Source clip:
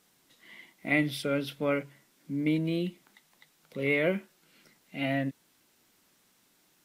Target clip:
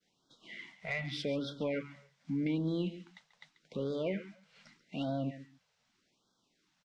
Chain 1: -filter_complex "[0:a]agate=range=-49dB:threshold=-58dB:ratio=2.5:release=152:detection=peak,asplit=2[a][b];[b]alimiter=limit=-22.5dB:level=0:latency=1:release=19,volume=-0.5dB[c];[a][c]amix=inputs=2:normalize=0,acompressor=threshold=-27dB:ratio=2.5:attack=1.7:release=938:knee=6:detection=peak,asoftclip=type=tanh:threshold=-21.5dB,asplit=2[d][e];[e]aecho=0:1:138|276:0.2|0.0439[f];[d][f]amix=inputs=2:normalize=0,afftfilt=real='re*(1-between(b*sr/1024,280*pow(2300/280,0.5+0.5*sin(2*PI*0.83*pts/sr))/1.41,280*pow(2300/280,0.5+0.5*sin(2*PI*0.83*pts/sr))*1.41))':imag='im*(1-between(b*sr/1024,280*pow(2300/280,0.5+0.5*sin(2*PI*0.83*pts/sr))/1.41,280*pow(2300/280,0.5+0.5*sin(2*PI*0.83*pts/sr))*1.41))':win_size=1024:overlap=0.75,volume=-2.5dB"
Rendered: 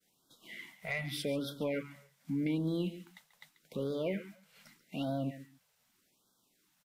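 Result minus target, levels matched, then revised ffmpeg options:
8000 Hz band +7.5 dB
-filter_complex "[0:a]agate=range=-49dB:threshold=-58dB:ratio=2.5:release=152:detection=peak,asplit=2[a][b];[b]alimiter=limit=-22.5dB:level=0:latency=1:release=19,volume=-0.5dB[c];[a][c]amix=inputs=2:normalize=0,acompressor=threshold=-27dB:ratio=2.5:attack=1.7:release=938:knee=6:detection=peak,lowpass=f=6.2k:w=0.5412,lowpass=f=6.2k:w=1.3066,asoftclip=type=tanh:threshold=-21.5dB,asplit=2[d][e];[e]aecho=0:1:138|276:0.2|0.0439[f];[d][f]amix=inputs=2:normalize=0,afftfilt=real='re*(1-between(b*sr/1024,280*pow(2300/280,0.5+0.5*sin(2*PI*0.83*pts/sr))/1.41,280*pow(2300/280,0.5+0.5*sin(2*PI*0.83*pts/sr))*1.41))':imag='im*(1-between(b*sr/1024,280*pow(2300/280,0.5+0.5*sin(2*PI*0.83*pts/sr))/1.41,280*pow(2300/280,0.5+0.5*sin(2*PI*0.83*pts/sr))*1.41))':win_size=1024:overlap=0.75,volume=-2.5dB"

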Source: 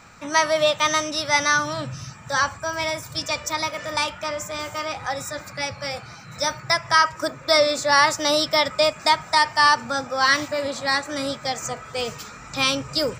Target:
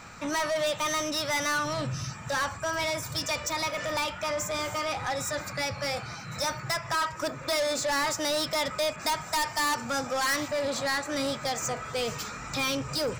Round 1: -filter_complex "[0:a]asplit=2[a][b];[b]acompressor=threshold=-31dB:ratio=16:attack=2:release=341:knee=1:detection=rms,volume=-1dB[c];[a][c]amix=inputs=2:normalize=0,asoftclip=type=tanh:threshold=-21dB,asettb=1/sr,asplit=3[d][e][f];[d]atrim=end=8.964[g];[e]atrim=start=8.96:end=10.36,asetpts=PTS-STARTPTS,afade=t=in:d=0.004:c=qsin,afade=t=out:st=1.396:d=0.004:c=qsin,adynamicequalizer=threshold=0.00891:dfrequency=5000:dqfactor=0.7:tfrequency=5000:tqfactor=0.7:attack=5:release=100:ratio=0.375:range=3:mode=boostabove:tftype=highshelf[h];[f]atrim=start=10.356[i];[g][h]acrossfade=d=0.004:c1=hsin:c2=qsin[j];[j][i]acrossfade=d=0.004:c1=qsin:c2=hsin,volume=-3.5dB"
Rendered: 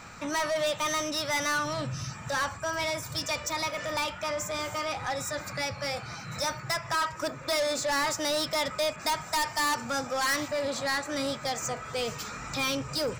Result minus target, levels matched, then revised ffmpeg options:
compressor: peak gain reduction +7.5 dB
-filter_complex "[0:a]asplit=2[a][b];[b]acompressor=threshold=-23dB:ratio=16:attack=2:release=341:knee=1:detection=rms,volume=-1dB[c];[a][c]amix=inputs=2:normalize=0,asoftclip=type=tanh:threshold=-21dB,asettb=1/sr,asplit=3[d][e][f];[d]atrim=end=8.964[g];[e]atrim=start=8.96:end=10.36,asetpts=PTS-STARTPTS,afade=t=in:d=0.004:c=qsin,afade=t=out:st=1.396:d=0.004:c=qsin,adynamicequalizer=threshold=0.00891:dfrequency=5000:dqfactor=0.7:tfrequency=5000:tqfactor=0.7:attack=5:release=100:ratio=0.375:range=3:mode=boostabove:tftype=highshelf[h];[f]atrim=start=10.356[i];[g][h]acrossfade=d=0.004:c1=hsin:c2=qsin[j];[j][i]acrossfade=d=0.004:c1=qsin:c2=hsin,volume=-3.5dB"

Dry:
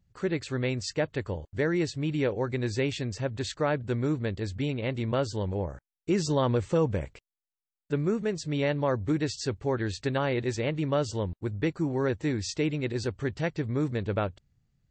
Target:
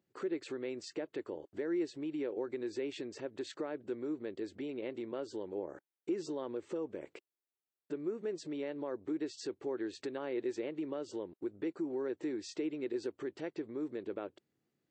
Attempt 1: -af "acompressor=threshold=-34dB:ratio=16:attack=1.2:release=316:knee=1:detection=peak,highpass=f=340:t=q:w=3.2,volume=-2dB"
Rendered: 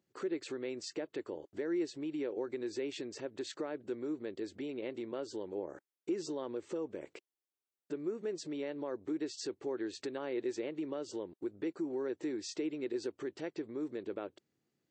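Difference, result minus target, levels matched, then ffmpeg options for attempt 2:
8000 Hz band +4.5 dB
-af "acompressor=threshold=-34dB:ratio=16:attack=1.2:release=316:knee=1:detection=peak,highpass=f=340:t=q:w=3.2,equalizer=f=6.2k:w=0.94:g=-5,volume=-2dB"

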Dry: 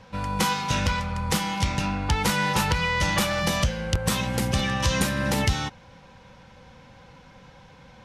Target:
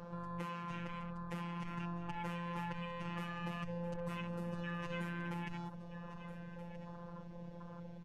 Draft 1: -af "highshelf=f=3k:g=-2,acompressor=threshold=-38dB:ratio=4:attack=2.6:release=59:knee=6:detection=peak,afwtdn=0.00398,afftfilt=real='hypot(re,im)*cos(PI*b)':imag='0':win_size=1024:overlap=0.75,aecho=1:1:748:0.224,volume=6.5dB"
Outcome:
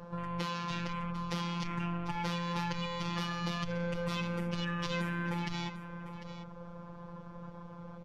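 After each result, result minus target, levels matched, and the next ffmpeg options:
echo 0.528 s early; compressor: peak gain reduction -6 dB
-af "highshelf=f=3k:g=-2,acompressor=threshold=-38dB:ratio=4:attack=2.6:release=59:knee=6:detection=peak,afwtdn=0.00398,afftfilt=real='hypot(re,im)*cos(PI*b)':imag='0':win_size=1024:overlap=0.75,aecho=1:1:1276:0.224,volume=6.5dB"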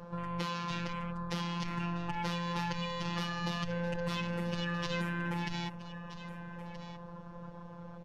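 compressor: peak gain reduction -6 dB
-af "highshelf=f=3k:g=-2,acompressor=threshold=-46dB:ratio=4:attack=2.6:release=59:knee=6:detection=peak,afwtdn=0.00398,afftfilt=real='hypot(re,im)*cos(PI*b)':imag='0':win_size=1024:overlap=0.75,aecho=1:1:1276:0.224,volume=6.5dB"

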